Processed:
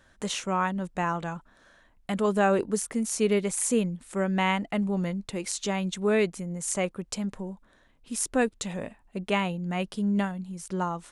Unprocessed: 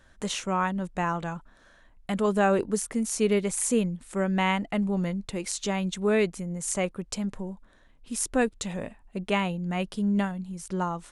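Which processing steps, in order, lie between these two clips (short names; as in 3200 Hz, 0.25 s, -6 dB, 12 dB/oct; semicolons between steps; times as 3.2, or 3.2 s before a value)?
low shelf 63 Hz -8 dB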